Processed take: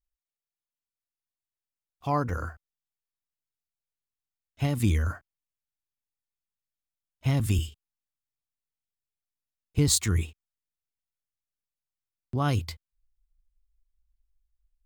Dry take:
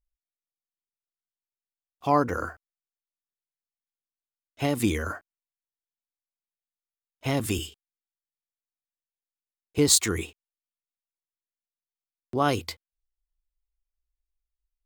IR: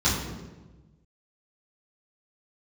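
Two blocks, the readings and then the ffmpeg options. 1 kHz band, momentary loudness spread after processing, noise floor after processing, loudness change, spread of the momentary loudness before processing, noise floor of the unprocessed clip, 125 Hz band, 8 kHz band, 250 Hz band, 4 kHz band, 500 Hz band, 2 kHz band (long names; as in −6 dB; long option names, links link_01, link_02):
−5.5 dB, 16 LU, below −85 dBFS, −1.5 dB, 20 LU, below −85 dBFS, +6.5 dB, −4.5 dB, −2.5 dB, −4.5 dB, −7.5 dB, −5.0 dB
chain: -af "asubboost=boost=6.5:cutoff=150,volume=-4.5dB"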